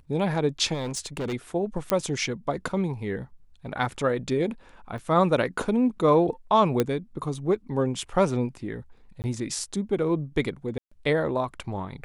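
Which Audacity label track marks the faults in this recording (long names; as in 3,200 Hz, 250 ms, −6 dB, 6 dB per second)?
0.730000	1.340000	clipping −26.5 dBFS
1.900000	1.900000	click −8 dBFS
4.980000	4.980000	drop-out 2.3 ms
6.800000	6.800000	click −9 dBFS
9.220000	9.240000	drop-out 19 ms
10.780000	10.910000	drop-out 135 ms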